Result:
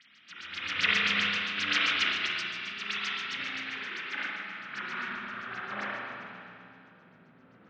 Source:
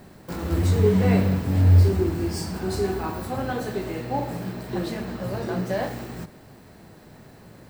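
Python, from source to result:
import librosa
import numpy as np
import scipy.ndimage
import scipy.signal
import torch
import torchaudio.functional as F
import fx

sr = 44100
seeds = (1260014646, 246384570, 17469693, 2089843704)

p1 = fx.halfwave_hold(x, sr)
p2 = scipy.signal.sosfilt(scipy.signal.butter(2, 51.0, 'highpass', fs=sr, output='sos'), p1)
p3 = fx.band_shelf(p2, sr, hz=590.0, db=-15.5, octaves=1.7)
p4 = fx.tremolo_random(p3, sr, seeds[0], hz=3.5, depth_pct=55)
p5 = fx.filter_sweep_bandpass(p4, sr, from_hz=2900.0, to_hz=630.0, start_s=3.18, end_s=7.06, q=1.5)
p6 = fx.pitch_keep_formants(p5, sr, semitones=1.0)
p7 = fx.filter_lfo_lowpass(p6, sr, shape='sine', hz=7.6, low_hz=420.0, high_hz=6300.0, q=5.6)
p8 = p7 + fx.echo_feedback(p7, sr, ms=152, feedback_pct=43, wet_db=-10.0, dry=0)
p9 = fx.rev_spring(p8, sr, rt60_s=2.4, pass_ms=(34, 49), chirp_ms=80, drr_db=-7.0)
p10 = fx.upward_expand(p9, sr, threshold_db=-31.0, expansion=1.5)
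y = p10 * librosa.db_to_amplitude(-3.0)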